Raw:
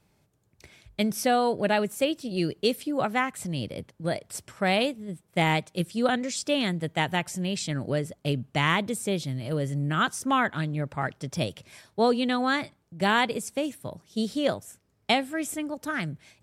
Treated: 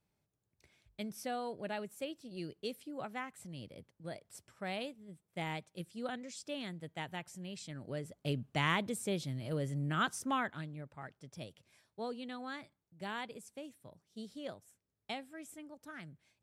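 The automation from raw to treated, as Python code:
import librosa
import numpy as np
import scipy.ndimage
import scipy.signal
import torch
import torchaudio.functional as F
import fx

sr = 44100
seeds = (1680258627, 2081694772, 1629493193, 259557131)

y = fx.gain(x, sr, db=fx.line((7.78, -16.0), (8.33, -8.0), (10.19, -8.0), (10.92, -18.5)))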